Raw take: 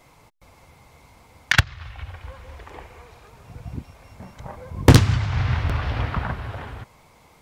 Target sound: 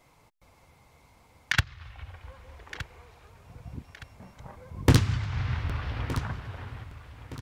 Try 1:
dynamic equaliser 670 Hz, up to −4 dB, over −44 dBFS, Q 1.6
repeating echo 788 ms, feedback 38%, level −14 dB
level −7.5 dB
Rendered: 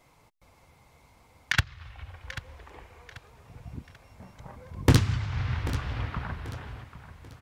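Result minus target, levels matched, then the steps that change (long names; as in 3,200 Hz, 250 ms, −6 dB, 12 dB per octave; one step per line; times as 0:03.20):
echo 429 ms early
change: repeating echo 1,217 ms, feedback 38%, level −14 dB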